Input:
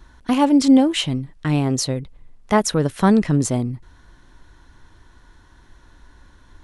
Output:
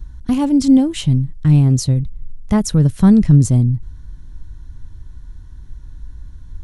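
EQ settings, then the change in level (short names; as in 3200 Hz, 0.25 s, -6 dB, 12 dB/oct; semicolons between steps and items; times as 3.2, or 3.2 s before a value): tone controls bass +13 dB, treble +8 dB; low shelf 190 Hz +12 dB; -8.0 dB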